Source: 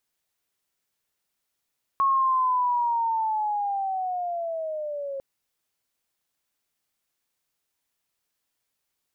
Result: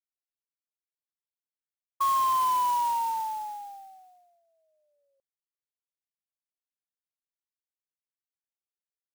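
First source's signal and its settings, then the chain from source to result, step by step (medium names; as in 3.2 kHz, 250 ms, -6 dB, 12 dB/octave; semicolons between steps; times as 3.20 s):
sweep linear 1.1 kHz -> 540 Hz -18 dBFS -> -29.5 dBFS 3.20 s
gate -25 dBFS, range -43 dB; overdrive pedal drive 10 dB, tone 1.1 kHz, clips at -18 dBFS; sampling jitter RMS 0.024 ms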